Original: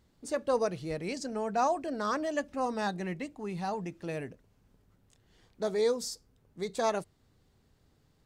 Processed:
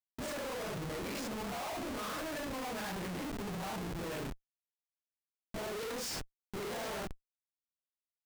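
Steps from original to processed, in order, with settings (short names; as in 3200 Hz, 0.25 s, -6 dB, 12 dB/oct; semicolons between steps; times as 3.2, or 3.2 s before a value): phase scrambler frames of 0.2 s; dynamic EQ 530 Hz, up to -3 dB, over -38 dBFS, Q 0.89; harmonic-percussive split harmonic -6 dB; Schmitt trigger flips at -47.5 dBFS; gain +1.5 dB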